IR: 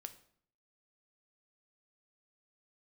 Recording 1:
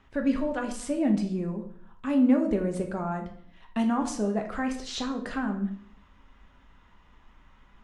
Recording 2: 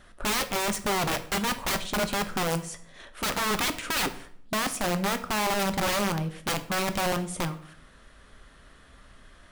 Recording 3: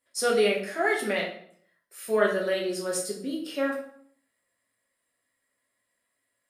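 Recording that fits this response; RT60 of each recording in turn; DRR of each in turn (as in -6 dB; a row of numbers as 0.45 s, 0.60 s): 2; 0.60 s, 0.60 s, 0.60 s; 3.0 dB, 8.5 dB, -2.5 dB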